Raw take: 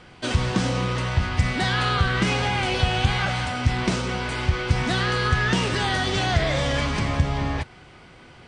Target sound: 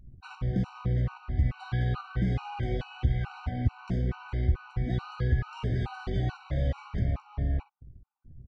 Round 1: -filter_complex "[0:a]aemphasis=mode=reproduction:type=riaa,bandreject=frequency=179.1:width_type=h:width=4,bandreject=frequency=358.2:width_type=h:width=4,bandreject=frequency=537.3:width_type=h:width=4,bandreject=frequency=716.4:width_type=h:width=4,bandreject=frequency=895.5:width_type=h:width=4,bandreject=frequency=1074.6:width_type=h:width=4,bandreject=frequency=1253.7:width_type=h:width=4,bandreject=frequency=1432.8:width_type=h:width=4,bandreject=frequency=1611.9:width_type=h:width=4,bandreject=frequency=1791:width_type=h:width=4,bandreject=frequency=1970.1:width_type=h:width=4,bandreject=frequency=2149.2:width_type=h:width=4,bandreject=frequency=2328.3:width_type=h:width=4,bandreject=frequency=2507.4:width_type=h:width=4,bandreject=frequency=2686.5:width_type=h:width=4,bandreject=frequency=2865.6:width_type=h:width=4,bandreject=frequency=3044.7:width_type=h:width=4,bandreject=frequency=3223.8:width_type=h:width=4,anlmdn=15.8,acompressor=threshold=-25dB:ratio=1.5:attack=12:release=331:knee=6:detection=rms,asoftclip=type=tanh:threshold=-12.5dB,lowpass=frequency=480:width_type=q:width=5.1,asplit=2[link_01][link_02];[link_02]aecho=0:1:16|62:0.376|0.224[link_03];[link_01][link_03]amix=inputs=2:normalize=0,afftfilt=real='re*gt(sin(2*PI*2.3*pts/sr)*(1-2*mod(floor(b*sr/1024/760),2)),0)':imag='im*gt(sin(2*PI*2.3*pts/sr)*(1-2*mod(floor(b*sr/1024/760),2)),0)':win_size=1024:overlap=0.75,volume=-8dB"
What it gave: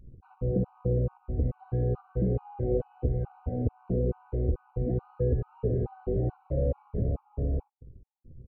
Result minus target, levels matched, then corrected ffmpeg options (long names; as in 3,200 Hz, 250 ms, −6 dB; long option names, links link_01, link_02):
500 Hz band +9.0 dB; soft clipping: distortion +9 dB
-filter_complex "[0:a]aemphasis=mode=reproduction:type=riaa,bandreject=frequency=179.1:width_type=h:width=4,bandreject=frequency=358.2:width_type=h:width=4,bandreject=frequency=537.3:width_type=h:width=4,bandreject=frequency=716.4:width_type=h:width=4,bandreject=frequency=895.5:width_type=h:width=4,bandreject=frequency=1074.6:width_type=h:width=4,bandreject=frequency=1253.7:width_type=h:width=4,bandreject=frequency=1432.8:width_type=h:width=4,bandreject=frequency=1611.9:width_type=h:width=4,bandreject=frequency=1791:width_type=h:width=4,bandreject=frequency=1970.1:width_type=h:width=4,bandreject=frequency=2149.2:width_type=h:width=4,bandreject=frequency=2328.3:width_type=h:width=4,bandreject=frequency=2507.4:width_type=h:width=4,bandreject=frequency=2686.5:width_type=h:width=4,bandreject=frequency=2865.6:width_type=h:width=4,bandreject=frequency=3044.7:width_type=h:width=4,bandreject=frequency=3223.8:width_type=h:width=4,anlmdn=15.8,acompressor=threshold=-25dB:ratio=1.5:attack=12:release=331:knee=6:detection=rms,asoftclip=type=tanh:threshold=-5dB,asplit=2[link_01][link_02];[link_02]aecho=0:1:16|62:0.376|0.224[link_03];[link_01][link_03]amix=inputs=2:normalize=0,afftfilt=real='re*gt(sin(2*PI*2.3*pts/sr)*(1-2*mod(floor(b*sr/1024/760),2)),0)':imag='im*gt(sin(2*PI*2.3*pts/sr)*(1-2*mod(floor(b*sr/1024/760),2)),0)':win_size=1024:overlap=0.75,volume=-8dB"